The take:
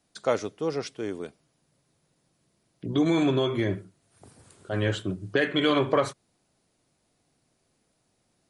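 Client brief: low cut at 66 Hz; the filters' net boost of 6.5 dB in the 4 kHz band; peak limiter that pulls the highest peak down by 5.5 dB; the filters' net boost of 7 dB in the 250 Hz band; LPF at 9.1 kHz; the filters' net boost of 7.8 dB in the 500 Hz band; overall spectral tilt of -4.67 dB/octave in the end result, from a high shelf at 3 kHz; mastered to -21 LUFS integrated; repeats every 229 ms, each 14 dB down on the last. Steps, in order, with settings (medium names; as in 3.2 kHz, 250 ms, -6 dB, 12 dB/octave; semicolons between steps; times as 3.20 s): high-pass 66 Hz; low-pass 9.1 kHz; peaking EQ 250 Hz +6 dB; peaking EQ 500 Hz +7.5 dB; treble shelf 3 kHz +6 dB; peaking EQ 4 kHz +4 dB; peak limiter -9.5 dBFS; feedback delay 229 ms, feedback 20%, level -14 dB; trim +1 dB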